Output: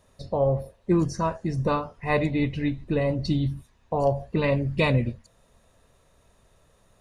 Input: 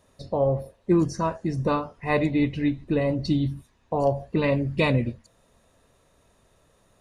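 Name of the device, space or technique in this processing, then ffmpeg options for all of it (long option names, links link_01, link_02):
low shelf boost with a cut just above: -af "lowshelf=frequency=68:gain=6,equalizer=frequency=300:width_type=o:width=0.59:gain=-3.5"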